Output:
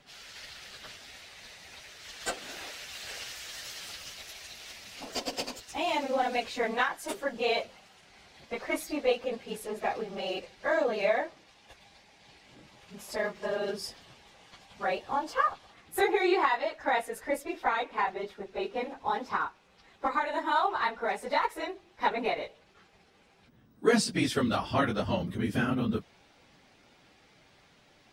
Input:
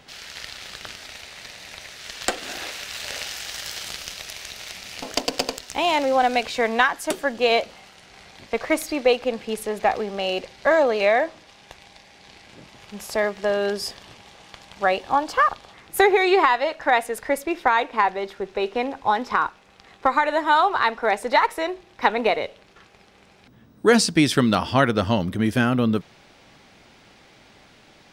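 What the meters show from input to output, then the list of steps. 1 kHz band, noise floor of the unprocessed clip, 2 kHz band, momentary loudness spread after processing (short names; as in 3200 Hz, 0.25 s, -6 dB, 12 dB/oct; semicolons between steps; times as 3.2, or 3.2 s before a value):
-9.0 dB, -53 dBFS, -9.5 dB, 17 LU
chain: phase scrambler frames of 50 ms; gain -9 dB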